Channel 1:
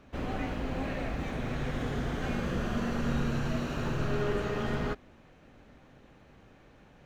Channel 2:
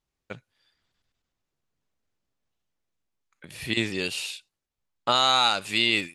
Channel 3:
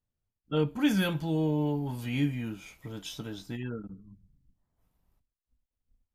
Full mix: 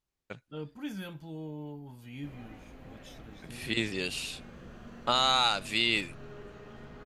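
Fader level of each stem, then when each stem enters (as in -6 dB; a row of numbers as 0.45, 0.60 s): -16.5, -4.5, -13.0 dB; 2.10, 0.00, 0.00 s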